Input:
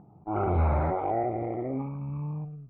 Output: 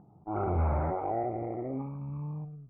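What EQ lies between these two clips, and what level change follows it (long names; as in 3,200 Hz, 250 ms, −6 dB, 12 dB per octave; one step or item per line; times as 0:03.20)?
low-pass filter 2,000 Hz 12 dB per octave
−3.5 dB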